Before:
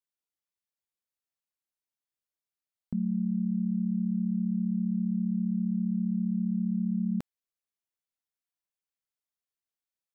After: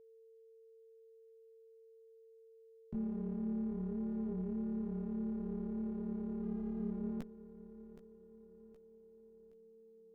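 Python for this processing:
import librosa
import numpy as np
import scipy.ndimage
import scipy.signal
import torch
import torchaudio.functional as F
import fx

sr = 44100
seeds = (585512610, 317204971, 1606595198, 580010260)

y = fx.diode_clip(x, sr, knee_db=-37.5)
y = fx.echo_feedback(y, sr, ms=770, feedback_pct=46, wet_db=-14)
y = fx.chorus_voices(y, sr, voices=4, hz=0.88, base_ms=16, depth_ms=2.8, mix_pct=40)
y = y + 10.0 ** (-55.0 / 20.0) * np.sin(2.0 * np.pi * 450.0 * np.arange(len(y)) / sr)
y = fx.running_max(y, sr, window=9, at=(6.43, 6.91))
y = F.gain(torch.from_numpy(y), -3.5).numpy()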